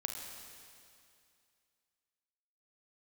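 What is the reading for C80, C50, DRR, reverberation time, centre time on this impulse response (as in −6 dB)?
4.0 dB, 2.5 dB, 2.0 dB, 2.4 s, 80 ms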